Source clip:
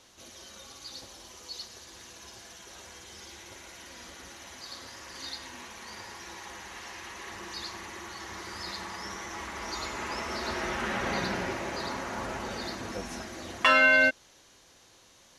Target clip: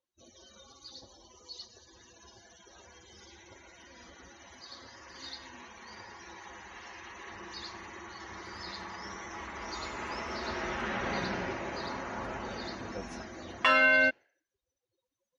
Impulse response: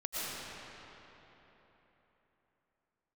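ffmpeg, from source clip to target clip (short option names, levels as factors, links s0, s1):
-af "afftdn=nr=34:nf=-49,highshelf=f=7600:g=-8,volume=0.75"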